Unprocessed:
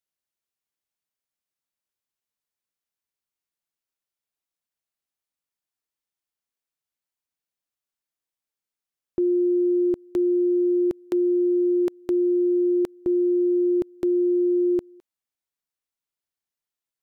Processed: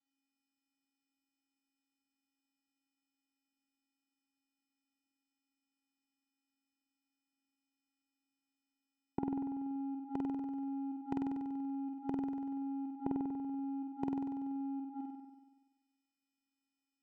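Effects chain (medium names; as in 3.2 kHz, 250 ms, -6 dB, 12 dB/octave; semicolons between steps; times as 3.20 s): vocoder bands 4, square 274 Hz; inverted gate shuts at -33 dBFS, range -31 dB; on a send: flutter echo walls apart 8.2 m, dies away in 1.2 s; on the sum: trim +9 dB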